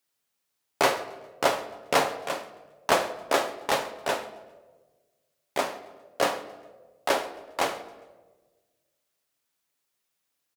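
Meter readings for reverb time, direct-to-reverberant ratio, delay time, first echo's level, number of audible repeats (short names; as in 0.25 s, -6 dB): 1.3 s, 8.0 dB, 0.135 s, -22.5 dB, 2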